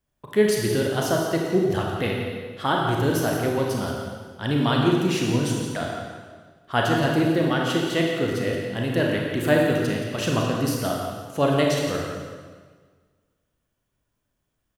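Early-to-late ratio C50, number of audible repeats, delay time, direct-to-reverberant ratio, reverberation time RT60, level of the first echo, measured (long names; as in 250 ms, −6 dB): 0.5 dB, 1, 172 ms, −1.5 dB, 1.6 s, −9.5 dB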